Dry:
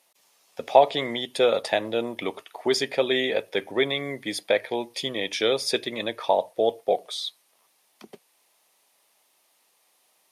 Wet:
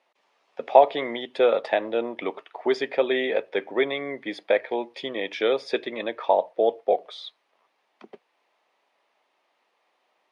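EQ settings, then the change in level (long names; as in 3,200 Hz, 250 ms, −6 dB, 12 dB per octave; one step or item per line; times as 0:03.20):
band-pass filter 260–2,300 Hz
+1.5 dB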